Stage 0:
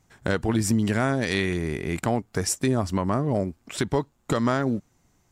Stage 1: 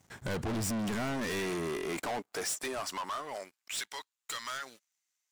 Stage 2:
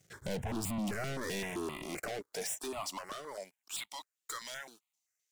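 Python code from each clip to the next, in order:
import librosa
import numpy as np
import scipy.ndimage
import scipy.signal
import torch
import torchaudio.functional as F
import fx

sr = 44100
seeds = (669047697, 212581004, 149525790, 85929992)

y1 = fx.filter_sweep_highpass(x, sr, from_hz=74.0, to_hz=2400.0, start_s=0.49, end_s=3.77, q=0.79)
y1 = 10.0 ** (-25.0 / 20.0) * np.tanh(y1 / 10.0 ** (-25.0 / 20.0))
y1 = fx.leveller(y1, sr, passes=3)
y1 = y1 * librosa.db_to_amplitude(-6.0)
y2 = fx.phaser_held(y1, sr, hz=7.7, low_hz=250.0, high_hz=1600.0)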